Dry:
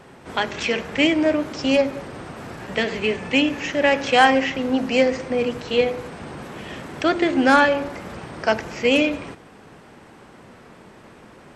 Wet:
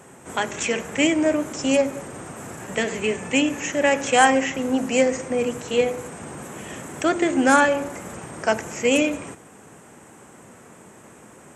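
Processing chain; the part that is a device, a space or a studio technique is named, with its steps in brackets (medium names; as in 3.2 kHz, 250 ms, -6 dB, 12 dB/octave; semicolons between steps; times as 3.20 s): budget condenser microphone (high-pass 77 Hz; resonant high shelf 5.8 kHz +8.5 dB, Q 3); trim -1 dB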